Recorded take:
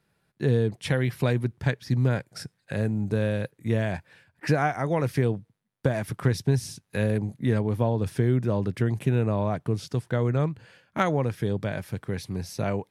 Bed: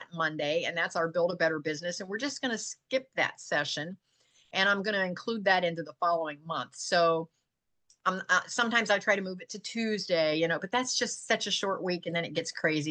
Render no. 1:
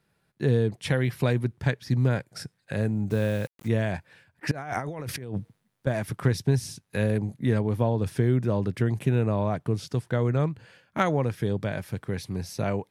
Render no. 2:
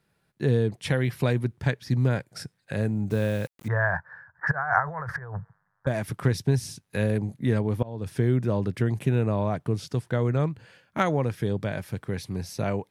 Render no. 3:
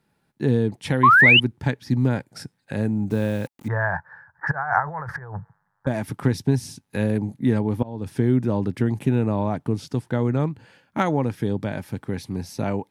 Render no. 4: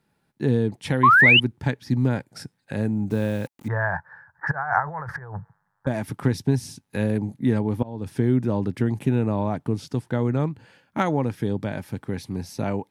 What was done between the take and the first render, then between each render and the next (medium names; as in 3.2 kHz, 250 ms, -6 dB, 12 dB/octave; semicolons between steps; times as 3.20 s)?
3.10–3.68 s: word length cut 8-bit, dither none; 4.51–5.87 s: compressor with a negative ratio -34 dBFS
3.68–5.87 s: FFT filter 170 Hz 0 dB, 240 Hz -28 dB, 410 Hz -7 dB, 1 kHz +12 dB, 1.7 kHz +13 dB, 2.5 kHz -22 dB, 3.6 kHz -21 dB, 5.3 kHz -15 dB, 12 kHz -25 dB; 7.83–8.23 s: fade in, from -23.5 dB
1.03–1.40 s: painted sound rise 1–3.1 kHz -13 dBFS; small resonant body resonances 260/850 Hz, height 8 dB, ringing for 25 ms
trim -1 dB